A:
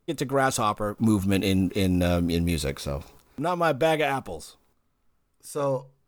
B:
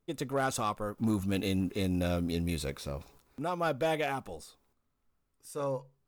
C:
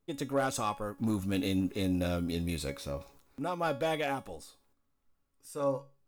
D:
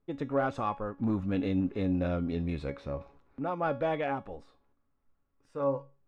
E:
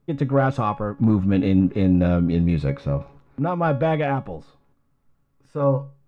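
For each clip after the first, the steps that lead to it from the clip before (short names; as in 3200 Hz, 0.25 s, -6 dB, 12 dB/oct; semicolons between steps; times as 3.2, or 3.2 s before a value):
overloaded stage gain 15 dB; gain -7.5 dB
resonator 280 Hz, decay 0.31 s, harmonics all, mix 70%; gain +8 dB
LPF 1900 Hz 12 dB/oct; gain +1.5 dB
bell 140 Hz +11 dB 0.85 oct; gain +8 dB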